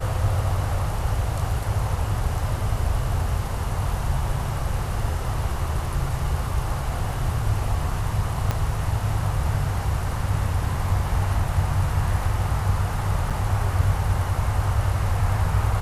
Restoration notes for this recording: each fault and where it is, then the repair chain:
0:08.51: click −10 dBFS
0:13.30–0:13.31: drop-out 6.4 ms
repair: click removal
repair the gap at 0:13.30, 6.4 ms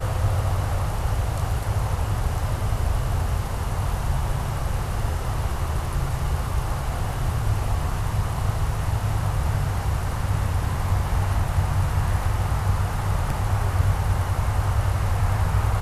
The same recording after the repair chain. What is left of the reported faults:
0:08.51: click

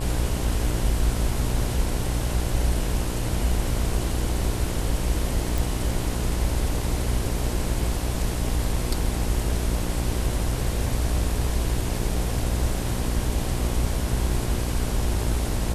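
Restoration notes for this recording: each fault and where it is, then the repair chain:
mains buzz 60 Hz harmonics 18 −28 dBFS
0:05.58: click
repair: click removal
hum removal 60 Hz, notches 18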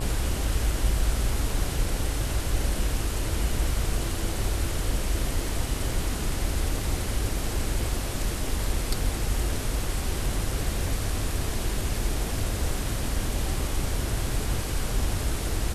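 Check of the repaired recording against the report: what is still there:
none of them is left

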